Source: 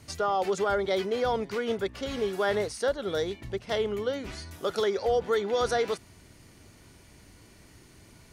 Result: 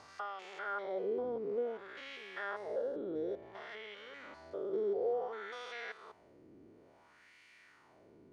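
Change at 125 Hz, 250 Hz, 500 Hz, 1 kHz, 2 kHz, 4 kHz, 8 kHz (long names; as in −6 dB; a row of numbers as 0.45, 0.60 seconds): −20.5 dB, −11.0 dB, −10.5 dB, −13.0 dB, −9.0 dB, −16.0 dB, below −20 dB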